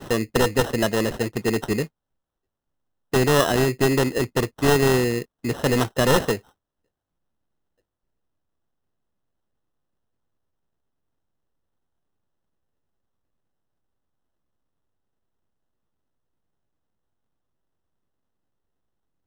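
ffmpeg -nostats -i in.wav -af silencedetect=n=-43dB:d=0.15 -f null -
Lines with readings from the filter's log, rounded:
silence_start: 1.87
silence_end: 3.13 | silence_duration: 1.27
silence_start: 5.24
silence_end: 5.44 | silence_duration: 0.20
silence_start: 6.39
silence_end: 19.27 | silence_duration: 12.87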